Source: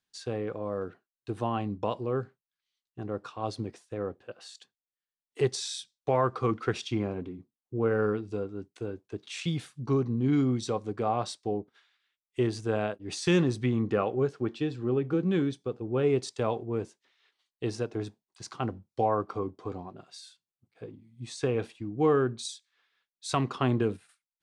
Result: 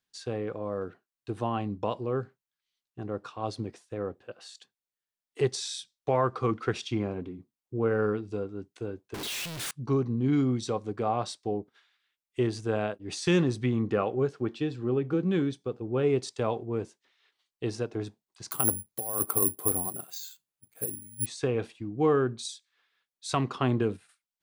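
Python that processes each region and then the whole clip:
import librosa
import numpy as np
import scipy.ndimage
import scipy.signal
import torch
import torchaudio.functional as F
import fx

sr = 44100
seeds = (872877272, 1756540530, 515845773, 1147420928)

y = fx.chain(x, sr, fx.clip_1bit(),
    fx.low_shelf(hz=460.0, db=-5.0), at=(9.14, 9.71))
y = fx.chain(y, sr, fx.over_compress(threshold_db=-31.0, ratio=-0.5),
    fx.resample_bad(factor=4, down='filtered', up='zero_stuff'), at=(18.51, 21.26))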